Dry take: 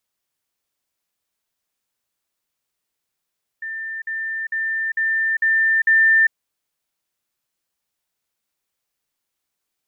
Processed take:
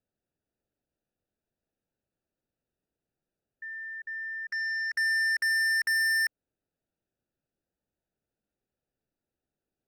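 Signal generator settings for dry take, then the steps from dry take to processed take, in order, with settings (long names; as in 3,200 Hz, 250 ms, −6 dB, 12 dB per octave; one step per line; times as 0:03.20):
level staircase 1,790 Hz −26 dBFS, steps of 3 dB, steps 6, 0.40 s 0.05 s
adaptive Wiener filter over 41 samples
in parallel at −0.5 dB: downward compressor, threshold −25 dBFS
on the sum: soft clipping −25 dBFS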